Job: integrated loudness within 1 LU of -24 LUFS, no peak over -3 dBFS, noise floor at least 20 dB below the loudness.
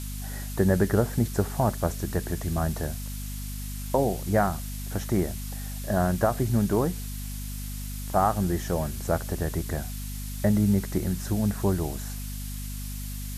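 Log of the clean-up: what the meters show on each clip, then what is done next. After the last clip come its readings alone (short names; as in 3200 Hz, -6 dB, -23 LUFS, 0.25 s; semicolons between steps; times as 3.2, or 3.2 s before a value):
hum 50 Hz; harmonics up to 250 Hz; hum level -33 dBFS; noise floor -34 dBFS; noise floor target -48 dBFS; loudness -28.0 LUFS; peak -10.0 dBFS; loudness target -24.0 LUFS
-> de-hum 50 Hz, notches 5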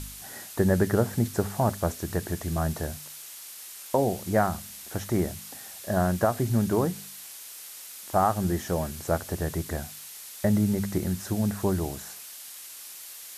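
hum none; noise floor -43 dBFS; noise floor target -48 dBFS
-> noise print and reduce 6 dB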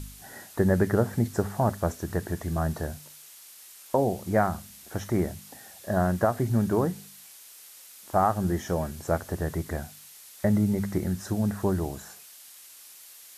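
noise floor -49 dBFS; loudness -27.5 LUFS; peak -9.5 dBFS; loudness target -24.0 LUFS
-> gain +3.5 dB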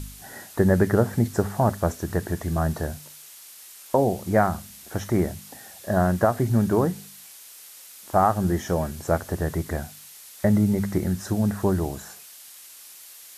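loudness -24.0 LUFS; peak -6.0 dBFS; noise floor -46 dBFS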